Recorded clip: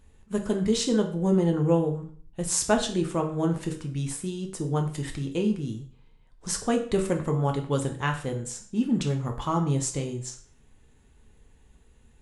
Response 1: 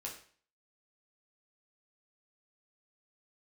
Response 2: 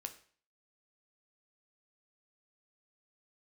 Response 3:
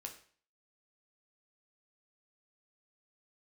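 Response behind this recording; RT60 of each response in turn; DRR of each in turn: 3; 0.45, 0.45, 0.45 s; -2.0, 6.5, 2.5 dB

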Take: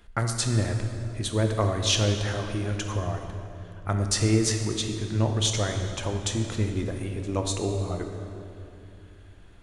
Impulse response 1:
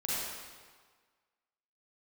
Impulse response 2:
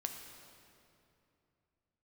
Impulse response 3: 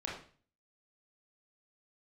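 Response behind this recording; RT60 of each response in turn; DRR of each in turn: 2; 1.6, 2.7, 0.40 s; -8.0, 3.5, -4.5 dB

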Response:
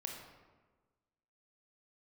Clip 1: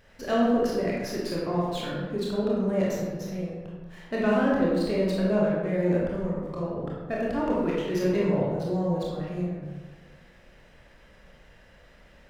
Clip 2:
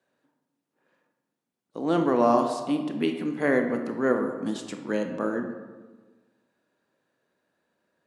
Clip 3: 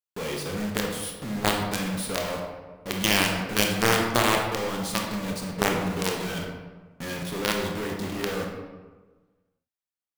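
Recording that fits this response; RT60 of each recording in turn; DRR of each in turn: 3; 1.3, 1.4, 1.3 s; -5.5, 5.0, 0.5 dB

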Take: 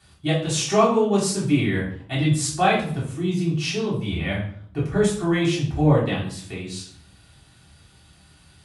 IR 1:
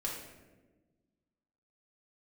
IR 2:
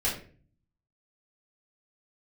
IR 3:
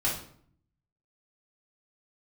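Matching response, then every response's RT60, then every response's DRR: 3; 1.3, 0.40, 0.60 s; -3.5, -8.5, -7.5 dB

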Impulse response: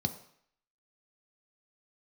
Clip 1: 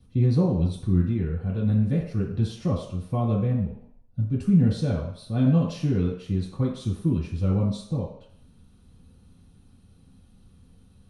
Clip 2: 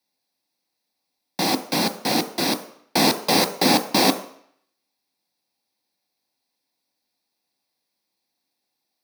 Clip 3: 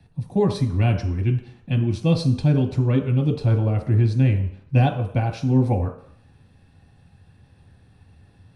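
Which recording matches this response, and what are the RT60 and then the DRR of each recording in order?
2; 0.65, 0.65, 0.65 s; -8.0, 6.5, 1.5 dB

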